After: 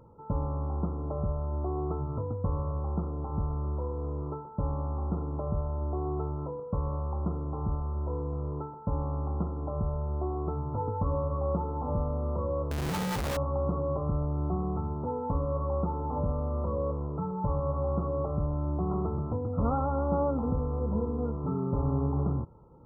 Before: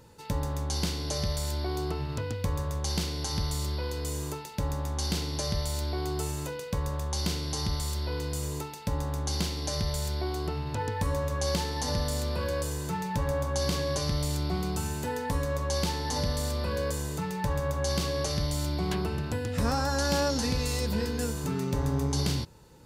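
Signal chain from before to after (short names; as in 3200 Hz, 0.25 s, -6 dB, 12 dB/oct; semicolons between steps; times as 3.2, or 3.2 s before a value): brick-wall FIR low-pass 1400 Hz; 12.71–13.37 Schmitt trigger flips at -40 dBFS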